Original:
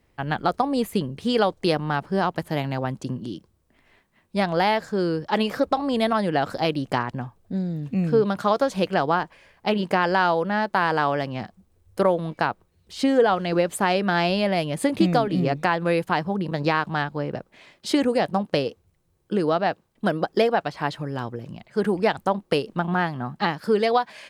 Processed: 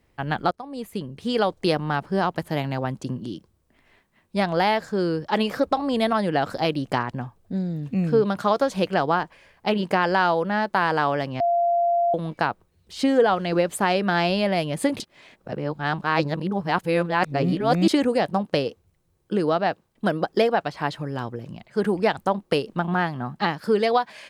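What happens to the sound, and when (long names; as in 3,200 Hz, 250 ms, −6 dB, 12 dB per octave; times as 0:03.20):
0:00.51–0:01.59: fade in, from −20.5 dB
0:11.40–0:12.14: beep over 690 Hz −17.5 dBFS
0:15.00–0:17.88: reverse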